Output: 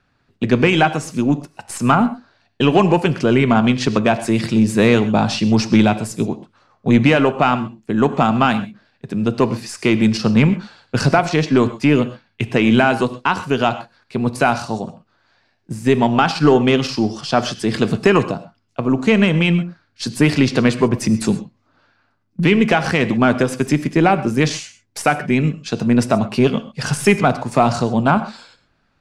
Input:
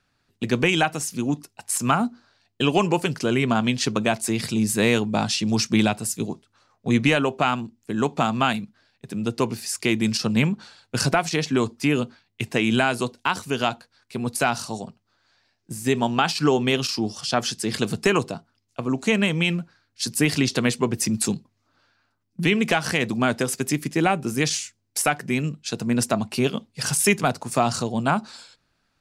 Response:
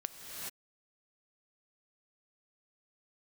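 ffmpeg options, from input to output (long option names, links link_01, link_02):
-filter_complex "[0:a]acontrast=59,aeval=exprs='0.708*(cos(1*acos(clip(val(0)/0.708,-1,1)))-cos(1*PI/2))+0.02*(cos(4*acos(clip(val(0)/0.708,-1,1)))-cos(4*PI/2))':channel_layout=same,aemphasis=mode=reproduction:type=75fm[link_01];[1:a]atrim=start_sample=2205,atrim=end_sample=6174[link_02];[link_01][link_02]afir=irnorm=-1:irlink=0,volume=3dB"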